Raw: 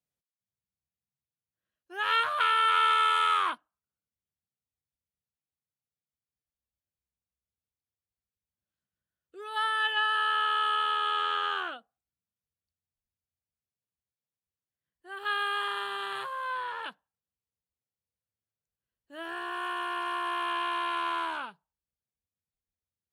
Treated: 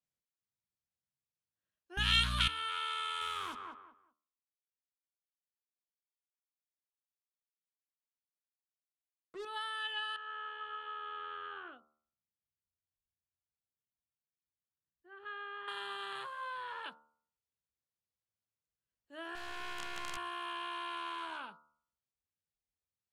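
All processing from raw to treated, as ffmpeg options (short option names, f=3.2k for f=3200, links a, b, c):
-filter_complex "[0:a]asettb=1/sr,asplit=3[a][b][c];[a]atrim=end=1.974[d];[b]atrim=start=1.97:end=2.48,asetpts=PTS-STARTPTS,afade=t=in:d=0.004:c=qsin,afade=t=out:st=0.506:d=0.004:c=qsin,tiltshelf=f=920:g=-10,acontrast=33,aeval=exprs='val(0)+0.0316*(sin(2*PI*60*n/s)+sin(2*PI*2*60*n/s)/2+sin(2*PI*3*60*n/s)/3+sin(2*PI*4*60*n/s)/4+sin(2*PI*5*60*n/s)/5)':c=same[e];[c]atrim=start=2.476[f];[d][e]acrossfade=d=0.004:c1=hsin:c2=qsin[g];[g][f]acrossfade=d=0.004:c1=qsin:c2=hsin,asettb=1/sr,asplit=3[h][i][j];[h]atrim=end=3.214[k];[i]atrim=start=3.21:end=9.45,asetpts=PTS-STARTPTS,afade=t=in:d=0.004:c=qsin,afade=t=out:st=6.236:d=0.004:c=qsin,lowshelf=f=400:g=11,acrusher=bits=6:mix=0:aa=0.5,asplit=2[l][m];[m]adelay=193,lowpass=f=1.9k:p=1,volume=-10dB,asplit=2[n][o];[o]adelay=193,lowpass=f=1.9k:p=1,volume=0.23,asplit=2[p][q];[q]adelay=193,lowpass=f=1.9k:p=1,volume=0.23[r];[l][n][p][r]amix=inputs=4:normalize=0,atrim=end_sample=275184[s];[j]atrim=start=9.446[t];[k][s]acrossfade=d=0.004:c1=hsin:c2=qsin[u];[u][t]acrossfade=d=0.004:c1=qsin:c2=hsin,asettb=1/sr,asplit=3[v][w][x];[v]atrim=end=10.164[y];[w]atrim=start=10.16:end=15.68,asetpts=PTS-STARTPTS,afade=t=in:d=0.004:c=qsin,afade=t=out:st=5.516:d=0.004:c=qsin,lowpass=1.5k,equalizer=f=790:t=o:w=1.8:g=-11[z];[x]atrim=start=15.676[aa];[y][z]acrossfade=d=0.004:c1=hsin:c2=qsin[ab];[ab][aa]acrossfade=d=0.004:c1=qsin:c2=hsin,asettb=1/sr,asplit=3[ac][ad][ae];[ac]atrim=end=19.354[af];[ad]atrim=start=19.35:end=20.17,asetpts=PTS-STARTPTS,afade=t=in:d=0.004:c=qsin,afade=t=out:st=0.816:d=0.004:c=qsin,highpass=62,highshelf=f=6.2k:t=q:w=3:g=-9.5,acrusher=bits=5:dc=4:mix=0:aa=0.000001[ag];[ae]atrim=start=20.166[ah];[af][ag]acrossfade=d=0.004:c1=hsin:c2=qsin[ai];[ai][ah]acrossfade=d=0.004:c1=qsin:c2=hsin,lowpass=9.5k,bandreject=f=75.23:t=h:w=4,bandreject=f=150.46:t=h:w=4,bandreject=f=225.69:t=h:w=4,bandreject=f=300.92:t=h:w=4,bandreject=f=376.15:t=h:w=4,bandreject=f=451.38:t=h:w=4,bandreject=f=526.61:t=h:w=4,bandreject=f=601.84:t=h:w=4,bandreject=f=677.07:t=h:w=4,bandreject=f=752.3:t=h:w=4,bandreject=f=827.53:t=h:w=4,bandreject=f=902.76:t=h:w=4,bandreject=f=977.99:t=h:w=4,bandreject=f=1.05322k:t=h:w=4,bandreject=f=1.12845k:t=h:w=4,bandreject=f=1.20368k:t=h:w=4,bandreject=f=1.27891k:t=h:w=4,bandreject=f=1.35414k:t=h:w=4,bandreject=f=1.42937k:t=h:w=4,acrossover=split=250|3000[aj][ak][al];[ak]acompressor=threshold=-35dB:ratio=6[am];[aj][am][al]amix=inputs=3:normalize=0,volume=-4.5dB"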